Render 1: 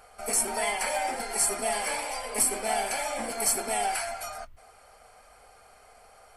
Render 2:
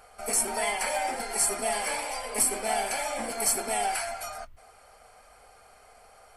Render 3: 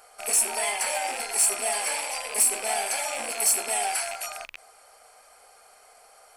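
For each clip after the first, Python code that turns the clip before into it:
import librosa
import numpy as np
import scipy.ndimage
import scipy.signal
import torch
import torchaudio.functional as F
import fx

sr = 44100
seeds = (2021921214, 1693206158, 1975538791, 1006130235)

y1 = x
y2 = fx.rattle_buzz(y1, sr, strikes_db=-52.0, level_db=-24.0)
y2 = fx.bass_treble(y2, sr, bass_db=-15, treble_db=6)
y2 = 10.0 ** (-12.5 / 20.0) * np.tanh(y2 / 10.0 ** (-12.5 / 20.0))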